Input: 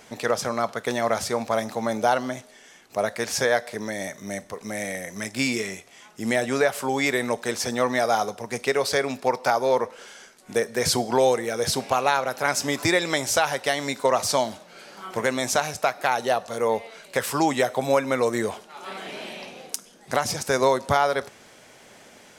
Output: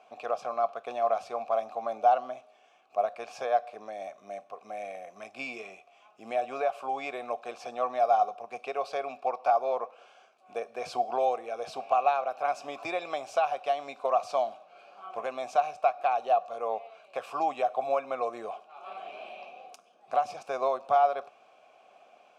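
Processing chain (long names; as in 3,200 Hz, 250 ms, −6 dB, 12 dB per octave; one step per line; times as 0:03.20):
formant filter a
level +3 dB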